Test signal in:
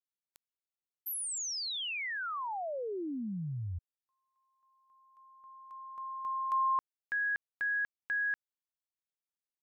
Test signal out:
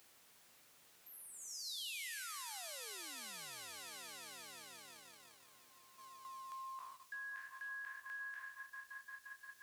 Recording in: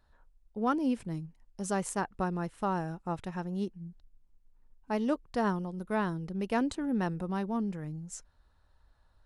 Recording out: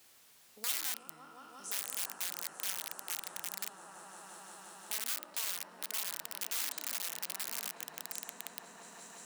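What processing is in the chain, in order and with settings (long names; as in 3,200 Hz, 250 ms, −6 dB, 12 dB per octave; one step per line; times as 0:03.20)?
peak hold with a decay on every bin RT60 0.91 s
low-pass filter 1,800 Hz 6 dB per octave
echo that builds up and dies away 175 ms, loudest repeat 5, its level −11.5 dB
in parallel at −1 dB: downward compressor 12 to 1, threshold −39 dBFS
on the sum: high-pass filter 56 Hz 12 dB per octave
wrap-around overflow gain 21.5 dB
noise gate −36 dBFS, range −16 dB
background noise brown −47 dBFS
first difference
multiband upward and downward compressor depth 40%
level −2.5 dB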